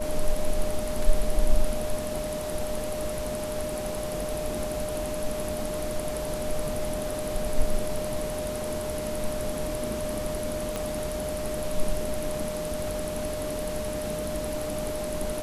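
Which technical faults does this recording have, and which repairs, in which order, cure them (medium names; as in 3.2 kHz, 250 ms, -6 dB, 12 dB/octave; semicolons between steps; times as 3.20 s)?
whine 610 Hz -31 dBFS
10.76 s: pop -15 dBFS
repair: de-click; band-stop 610 Hz, Q 30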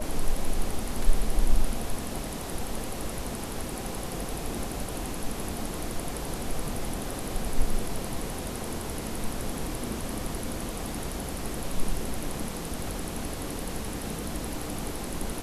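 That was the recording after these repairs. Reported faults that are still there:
10.76 s: pop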